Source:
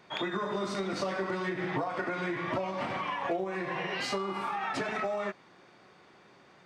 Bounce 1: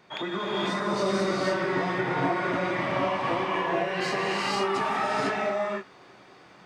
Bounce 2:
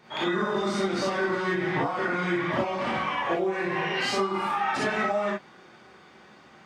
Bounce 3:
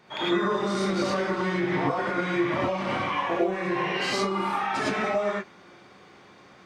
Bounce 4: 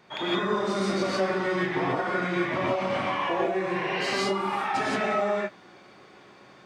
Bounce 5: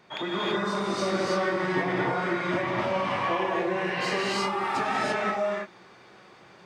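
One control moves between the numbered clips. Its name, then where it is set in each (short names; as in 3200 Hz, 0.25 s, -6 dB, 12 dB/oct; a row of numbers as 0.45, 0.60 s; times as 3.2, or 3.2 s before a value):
non-linear reverb, gate: 530, 80, 130, 190, 360 ms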